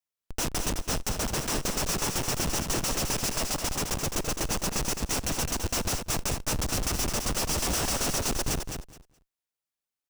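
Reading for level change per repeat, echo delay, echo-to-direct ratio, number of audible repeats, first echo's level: −15.0 dB, 211 ms, −6.5 dB, 2, −6.5 dB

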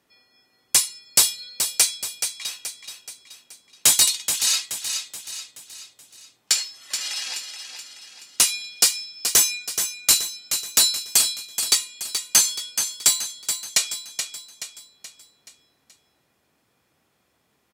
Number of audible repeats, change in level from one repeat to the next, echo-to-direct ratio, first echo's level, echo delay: 5, −6.5 dB, −7.0 dB, −8.0 dB, 427 ms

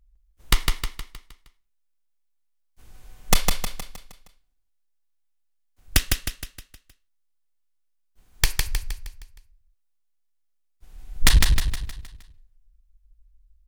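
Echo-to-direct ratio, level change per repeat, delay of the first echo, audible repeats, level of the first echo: −3.0 dB, −6.5 dB, 156 ms, 5, −4.0 dB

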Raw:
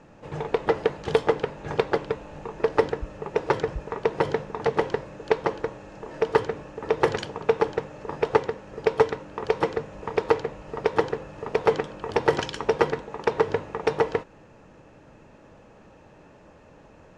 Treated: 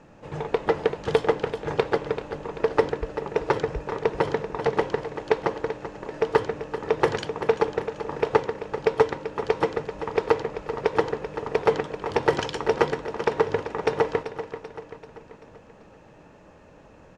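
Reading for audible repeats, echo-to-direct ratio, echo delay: 5, −9.5 dB, 387 ms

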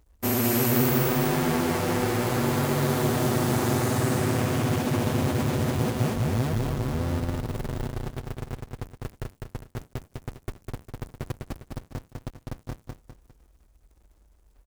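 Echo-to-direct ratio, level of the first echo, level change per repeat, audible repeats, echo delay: −2.5 dB, −3.0 dB, −8.5 dB, 3, 202 ms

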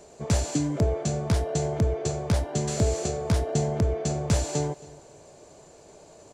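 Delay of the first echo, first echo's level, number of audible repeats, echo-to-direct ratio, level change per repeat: 270 ms, −21.0 dB, 2, −20.5 dB, −12.0 dB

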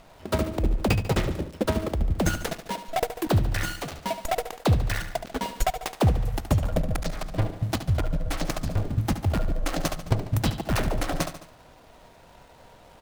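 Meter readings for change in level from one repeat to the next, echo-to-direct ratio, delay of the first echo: −5.5 dB, −9.5 dB, 72 ms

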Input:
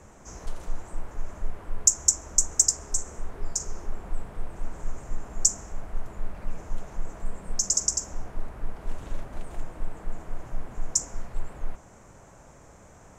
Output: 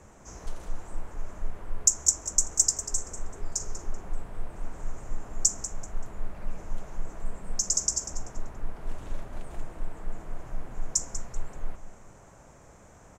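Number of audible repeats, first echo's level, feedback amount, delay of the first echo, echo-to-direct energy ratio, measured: 2, −12.5 dB, 27%, 192 ms, −12.0 dB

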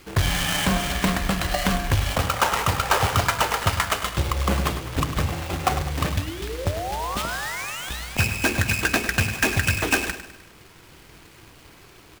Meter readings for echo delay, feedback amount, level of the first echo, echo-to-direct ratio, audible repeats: 102 ms, 47%, −11.5 dB, −10.5 dB, 4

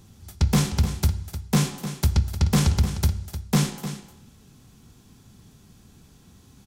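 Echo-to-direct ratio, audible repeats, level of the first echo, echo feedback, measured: −11.5 dB, 1, −11.5 dB, repeats not evenly spaced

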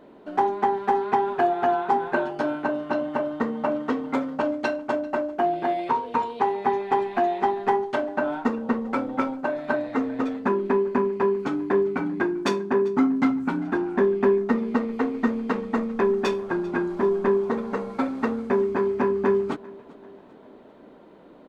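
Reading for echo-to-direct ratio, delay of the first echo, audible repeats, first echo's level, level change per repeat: −21.0 dB, 394 ms, 3, −22.0 dB, −6.0 dB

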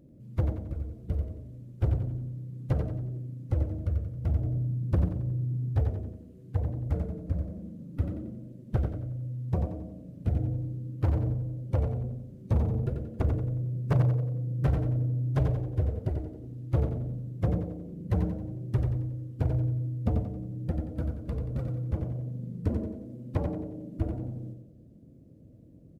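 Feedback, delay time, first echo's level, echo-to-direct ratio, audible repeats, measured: 41%, 90 ms, −6.0 dB, −5.0 dB, 4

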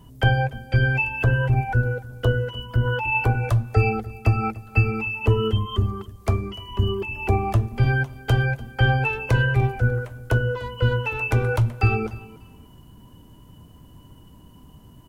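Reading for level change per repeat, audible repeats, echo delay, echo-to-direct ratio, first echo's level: −14.0 dB, 2, 295 ms, −20.0 dB, −20.0 dB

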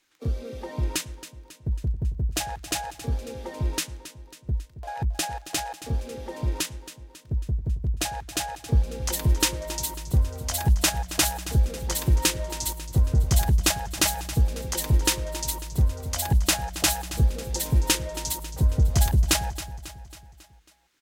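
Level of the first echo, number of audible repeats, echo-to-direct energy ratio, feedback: −14.0 dB, 4, −12.5 dB, 53%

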